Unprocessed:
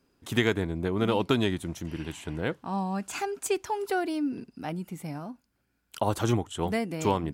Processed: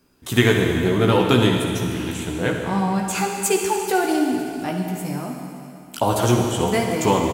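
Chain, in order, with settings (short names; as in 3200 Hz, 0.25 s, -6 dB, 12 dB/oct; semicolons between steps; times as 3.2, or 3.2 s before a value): high shelf 8500 Hz +7.5 dB; doubler 16 ms -5 dB; on a send: reverb RT60 2.7 s, pre-delay 49 ms, DRR 2 dB; on the sum: gain +6 dB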